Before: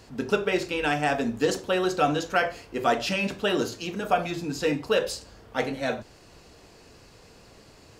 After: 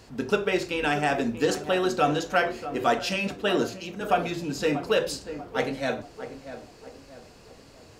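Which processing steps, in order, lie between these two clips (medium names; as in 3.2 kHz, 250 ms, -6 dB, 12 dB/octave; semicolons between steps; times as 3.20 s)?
tape echo 638 ms, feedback 47%, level -10 dB, low-pass 1.3 kHz; 2.99–4.01 s: three bands expanded up and down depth 70%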